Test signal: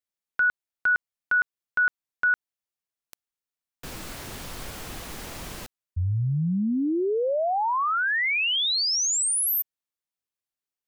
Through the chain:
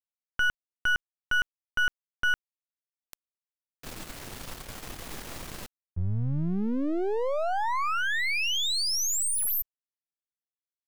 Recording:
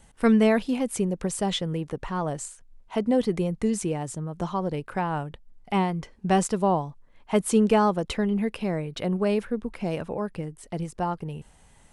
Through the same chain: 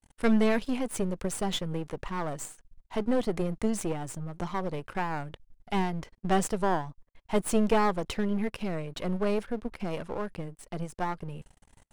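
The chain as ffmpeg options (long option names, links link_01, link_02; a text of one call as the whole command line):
ffmpeg -i in.wav -af "aeval=exprs='if(lt(val(0),0),0.251*val(0),val(0))':channel_layout=same,agate=range=-33dB:threshold=-55dB:ratio=3:release=25:detection=rms" out.wav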